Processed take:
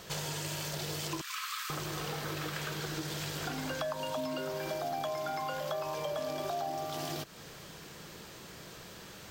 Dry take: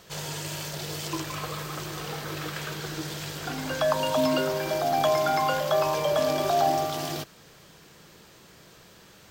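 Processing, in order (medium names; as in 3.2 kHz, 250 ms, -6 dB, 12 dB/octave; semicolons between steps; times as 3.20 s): 1.21–1.70 s: elliptic high-pass 1.2 kHz, stop band 60 dB; compression 6:1, threshold -38 dBFS, peak gain reduction 17.5 dB; trim +3.5 dB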